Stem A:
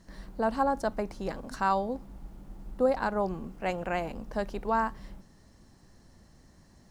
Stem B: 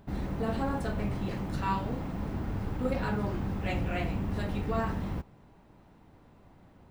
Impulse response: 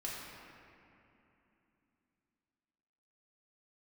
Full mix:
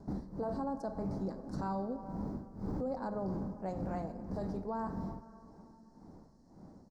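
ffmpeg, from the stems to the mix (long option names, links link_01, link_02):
-filter_complex "[0:a]volume=-14dB,asplit=3[link_01][link_02][link_03];[link_02]volume=-8dB[link_04];[1:a]tremolo=f=1.8:d=0.94,adelay=3,volume=-2dB[link_05];[link_03]apad=whole_len=304555[link_06];[link_05][link_06]sidechaincompress=threshold=-49dB:ratio=3:attack=6.1:release=958[link_07];[2:a]atrim=start_sample=2205[link_08];[link_04][link_08]afir=irnorm=-1:irlink=0[link_09];[link_01][link_07][link_09]amix=inputs=3:normalize=0,firequalizer=gain_entry='entry(110,0);entry(180,9);entry(310,7);entry(490,5);entry(860,3);entry(2800,-21);entry(4700,2);entry(12000,-10)':delay=0.05:min_phase=1,alimiter=level_in=5.5dB:limit=-24dB:level=0:latency=1:release=13,volume=-5.5dB"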